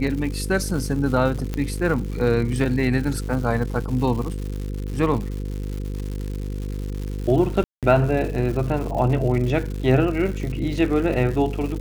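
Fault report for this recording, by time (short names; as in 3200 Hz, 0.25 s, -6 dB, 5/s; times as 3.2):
buzz 50 Hz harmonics 10 -28 dBFS
crackle 230/s -30 dBFS
1.54 pop -13 dBFS
7.64–7.83 gap 0.187 s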